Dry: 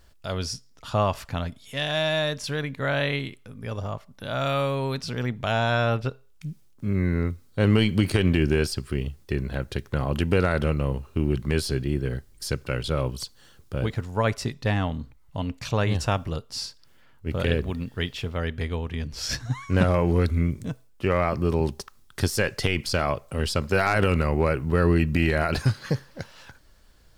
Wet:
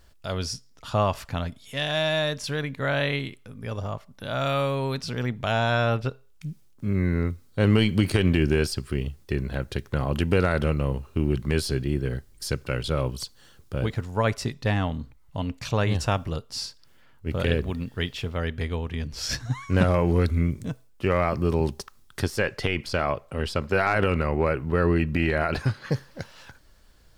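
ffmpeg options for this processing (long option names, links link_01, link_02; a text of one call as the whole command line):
ffmpeg -i in.wav -filter_complex "[0:a]asettb=1/sr,asplit=3[link_01][link_02][link_03];[link_01]atrim=end=22.214[link_04];[link_02]atrim=start=22.21:end=25.92,asetpts=PTS-STARTPTS,afade=type=in:duration=0.004:curve=qsin,afade=type=out:start_time=3.706:duration=0.004:curve=qsin,bass=frequency=250:gain=-3,treble=frequency=4000:gain=-9[link_05];[link_03]atrim=start=25.916[link_06];[link_04][link_05]acrossfade=duration=0.004:curve1=hsin:curve2=qsin[link_07];[link_07][link_06]acrossfade=duration=0.004:curve1=qsin:curve2=hsin" out.wav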